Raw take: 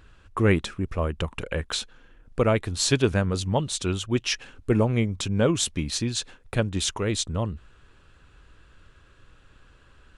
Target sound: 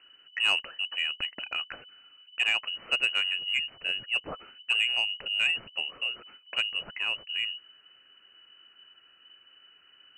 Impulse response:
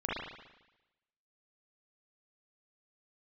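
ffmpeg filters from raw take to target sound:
-af "lowpass=f=2600:t=q:w=0.5098,lowpass=f=2600:t=q:w=0.6013,lowpass=f=2600:t=q:w=0.9,lowpass=f=2600:t=q:w=2.563,afreqshift=-3000,asoftclip=type=tanh:threshold=0.299,volume=0.596"

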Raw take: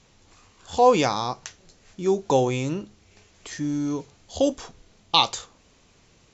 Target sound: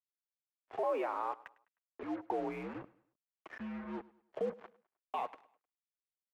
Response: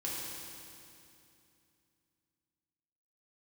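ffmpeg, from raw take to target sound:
-filter_complex "[0:a]agate=range=0.0224:threshold=0.00398:ratio=3:detection=peak,highpass=f=200:t=q:w=0.5412,highpass=f=200:t=q:w=1.307,lowpass=f=2800:t=q:w=0.5176,lowpass=f=2800:t=q:w=0.7071,lowpass=f=2800:t=q:w=1.932,afreqshift=-77,acompressor=threshold=0.0178:ratio=1.5,alimiter=limit=0.0841:level=0:latency=1,asettb=1/sr,asplit=3[s0][s1][s2];[s0]atrim=end=0.834[s3];[s1]atrim=start=0.83:end=2.03,asetpts=PTS-STARTPTS,afade=t=in:d=0.004:c=qsin,afade=t=out:st=1.196:d=0.004:c=qsin,afreqshift=150[s4];[s2]atrim=start=2.026[s5];[s3][s4]acrossfade=d=0.004:c1=hsin:c2=qsin[s6];[s6][s5]acrossfade=d=0.004:c1=qsin:c2=hsin,flanger=delay=2.4:depth=4:regen=-43:speed=1.3:shape=triangular,acrusher=bits=6:mix=0:aa=0.5,acrossover=split=350 2100:gain=0.224 1 0.0891[s7][s8][s9];[s7][s8][s9]amix=inputs=3:normalize=0,aecho=1:1:103|206|309:0.0891|0.0348|0.0136,volume=1.12"

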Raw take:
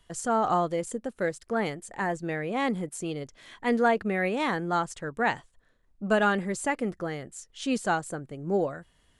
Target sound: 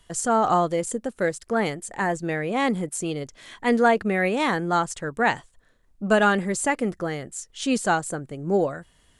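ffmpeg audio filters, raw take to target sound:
-af "equalizer=f=8400:t=o:w=1.3:g=4,volume=1.68"

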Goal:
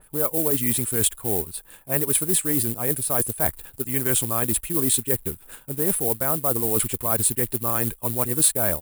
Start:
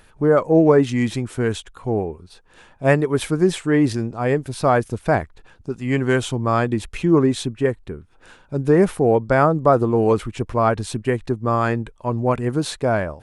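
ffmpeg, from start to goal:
-af "atempo=1.5,acrusher=bits=5:mode=log:mix=0:aa=0.000001,areverse,acompressor=threshold=0.0501:ratio=6,areverse,aexciter=amount=14.6:drive=2.5:freq=8500,adynamicequalizer=threshold=0.00562:dfrequency=2300:dqfactor=0.7:tfrequency=2300:tqfactor=0.7:attack=5:release=100:ratio=0.375:range=2.5:mode=boostabove:tftype=highshelf,volume=1.19"

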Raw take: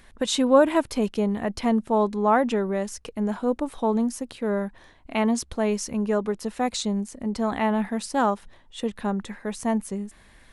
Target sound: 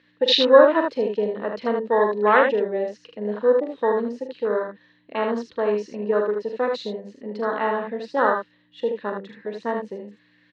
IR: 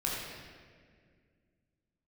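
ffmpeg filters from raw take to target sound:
-filter_complex "[0:a]afwtdn=0.0447,aeval=exprs='val(0)+0.00282*(sin(2*PI*60*n/s)+sin(2*PI*2*60*n/s)/2+sin(2*PI*3*60*n/s)/3+sin(2*PI*4*60*n/s)/4+sin(2*PI*5*60*n/s)/5)':c=same,highpass=440,equalizer=f=490:t=q:w=4:g=7,equalizer=f=740:t=q:w=4:g=-10,equalizer=f=1800:t=q:w=4:g=9,equalizer=f=2800:t=q:w=4:g=8,equalizer=f=4100:t=q:w=4:g=8,lowpass=f=5000:w=0.5412,lowpass=f=5000:w=1.3066,asplit=2[s0][s1];[s1]aecho=0:1:43|77:0.376|0.562[s2];[s0][s2]amix=inputs=2:normalize=0,volume=1.58"

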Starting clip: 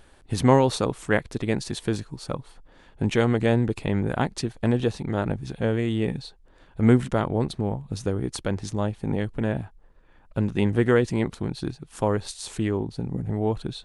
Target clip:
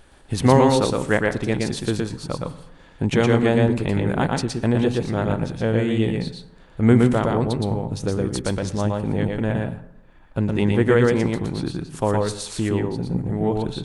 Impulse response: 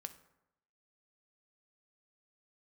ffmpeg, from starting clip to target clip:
-filter_complex "[0:a]asplit=2[s0][s1];[1:a]atrim=start_sample=2205,adelay=117[s2];[s1][s2]afir=irnorm=-1:irlink=0,volume=1.33[s3];[s0][s3]amix=inputs=2:normalize=0,volume=1.26"

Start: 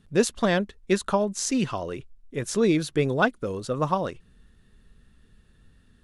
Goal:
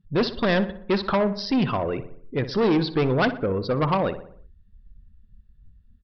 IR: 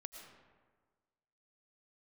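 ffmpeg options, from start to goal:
-filter_complex "[0:a]afftdn=nr=26:nf=-44,aresample=11025,asoftclip=type=tanh:threshold=0.0631,aresample=44100,asplit=2[s0][s1];[s1]adelay=61,lowpass=f=2500:p=1,volume=0.251,asplit=2[s2][s3];[s3]adelay=61,lowpass=f=2500:p=1,volume=0.54,asplit=2[s4][s5];[s5]adelay=61,lowpass=f=2500:p=1,volume=0.54,asplit=2[s6][s7];[s7]adelay=61,lowpass=f=2500:p=1,volume=0.54,asplit=2[s8][s9];[s9]adelay=61,lowpass=f=2500:p=1,volume=0.54,asplit=2[s10][s11];[s11]adelay=61,lowpass=f=2500:p=1,volume=0.54[s12];[s0][s2][s4][s6][s8][s10][s12]amix=inputs=7:normalize=0,volume=2.24"

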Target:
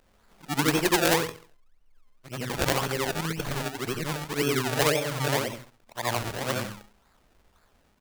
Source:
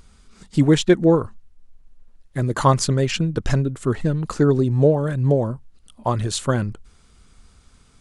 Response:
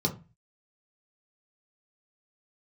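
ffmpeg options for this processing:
-filter_complex "[0:a]afftfilt=real='re':imag='-im':win_size=8192:overlap=0.75,asplit=2[s0][s1];[s1]adelay=68,lowpass=f=2200:p=1,volume=0.168,asplit=2[s2][s3];[s3]adelay=68,lowpass=f=2200:p=1,volume=0.43,asplit=2[s4][s5];[s5]adelay=68,lowpass=f=2200:p=1,volume=0.43,asplit=2[s6][s7];[s7]adelay=68,lowpass=f=2200:p=1,volume=0.43[s8];[s0][s2][s4][s6][s8]amix=inputs=5:normalize=0,acrusher=samples=29:mix=1:aa=0.000001:lfo=1:lforange=29:lforate=1.9,lowshelf=f=370:g=-11.5,aeval=exprs='(mod(3.35*val(0)+1,2)-1)/3.35':c=same,volume=1.19"

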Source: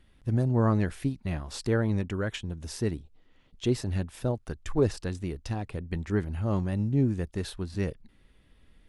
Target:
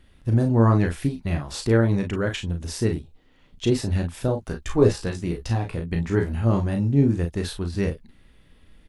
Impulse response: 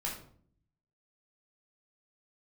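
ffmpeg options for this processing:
-filter_complex "[0:a]asettb=1/sr,asplit=3[s0][s1][s2];[s0]atrim=end=4.364[s3];[s1]atrim=start=4.36:end=6.51,asetpts=PTS-STARTPTS,afade=t=in:d=0.004:c=qsin,afade=t=out:st=2.146:d=0.004:c=qsin,asplit=2[s4][s5];[s5]adelay=17,volume=0.447[s6];[s4][s6]amix=inputs=2:normalize=0,atrim=end_sample=94815[s7];[s2]atrim=start=6.506[s8];[s3][s7]acrossfade=d=0.004:c1=hsin:c2=qsin[s9];[s9][s8]acrossfade=d=0.004:c1=qsin:c2=hsin,asplit=2[s10][s11];[s11]aecho=0:1:35|47:0.501|0.266[s12];[s10][s12]amix=inputs=2:normalize=0,volume=1.78"

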